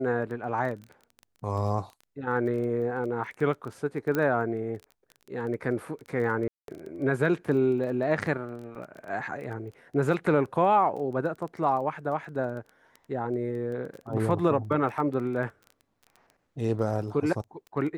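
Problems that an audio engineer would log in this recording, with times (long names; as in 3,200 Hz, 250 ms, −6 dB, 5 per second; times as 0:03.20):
surface crackle 14 per second −36 dBFS
0:04.15: click −15 dBFS
0:06.48–0:06.68: drop-out 202 ms
0:08.75: drop-out 2.9 ms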